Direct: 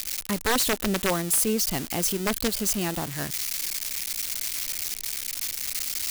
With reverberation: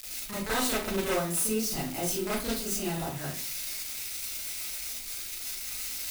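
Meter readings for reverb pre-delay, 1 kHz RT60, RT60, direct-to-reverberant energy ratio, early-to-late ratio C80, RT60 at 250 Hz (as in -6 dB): 31 ms, 0.40 s, 0.45 s, -10.0 dB, 8.0 dB, 0.55 s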